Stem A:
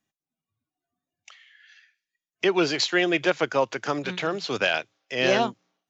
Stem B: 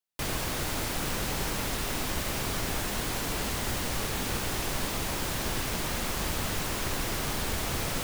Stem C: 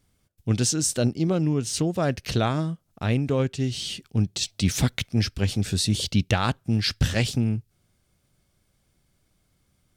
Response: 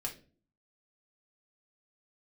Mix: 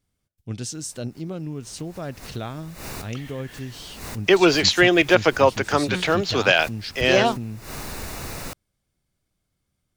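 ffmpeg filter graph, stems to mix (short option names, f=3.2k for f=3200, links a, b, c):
-filter_complex "[0:a]dynaudnorm=f=260:g=7:m=7dB,adelay=1850,volume=0.5dB[a];[1:a]bandreject=f=3.2k:w=5.6,adelay=500,volume=-2dB,afade=t=in:st=1.53:d=0.56:silence=0.316228[b];[2:a]volume=-8.5dB,asplit=2[c][d];[d]apad=whole_len=376243[e];[b][e]sidechaincompress=threshold=-48dB:ratio=12:attack=16:release=130[f];[a][f][c]amix=inputs=3:normalize=0"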